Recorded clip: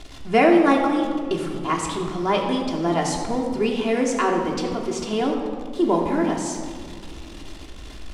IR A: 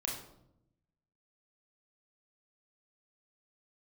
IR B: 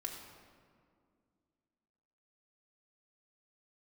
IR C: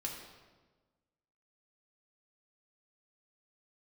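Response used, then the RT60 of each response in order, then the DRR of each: B; 0.80 s, 2.2 s, 1.3 s; -2.0 dB, -1.0 dB, -1.5 dB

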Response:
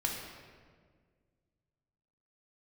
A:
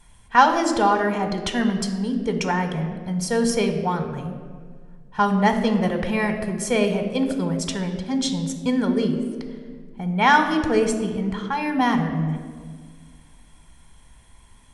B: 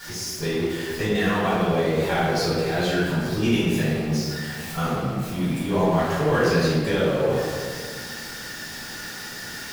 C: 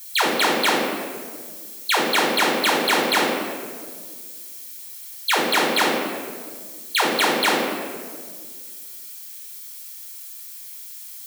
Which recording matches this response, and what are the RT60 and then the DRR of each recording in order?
C; 1.8 s, 1.7 s, 1.7 s; 6.0 dB, -10.5 dB, -1.0 dB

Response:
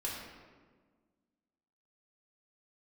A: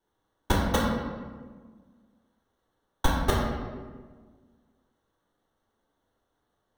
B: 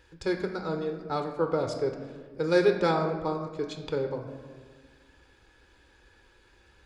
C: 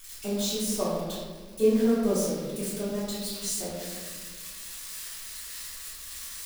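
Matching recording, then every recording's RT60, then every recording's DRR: A; 1.5 s, 1.5 s, 1.5 s; -5.5 dB, 4.0 dB, -13.0 dB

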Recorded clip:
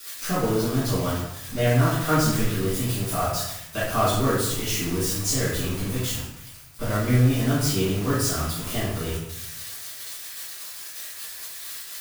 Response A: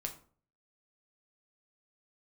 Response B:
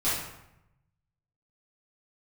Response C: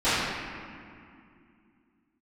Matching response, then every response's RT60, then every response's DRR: B; 0.45 s, 0.85 s, 2.4 s; 2.5 dB, -12.5 dB, -20.5 dB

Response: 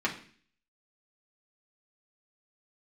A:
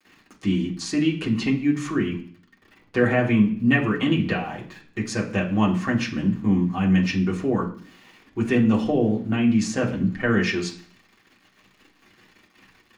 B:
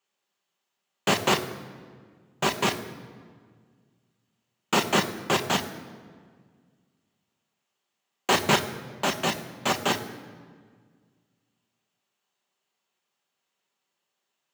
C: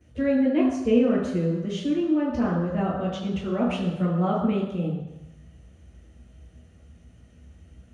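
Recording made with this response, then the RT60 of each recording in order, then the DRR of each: A; 0.45 s, 1.8 s, 1.0 s; -4.0 dB, 4.5 dB, -13.5 dB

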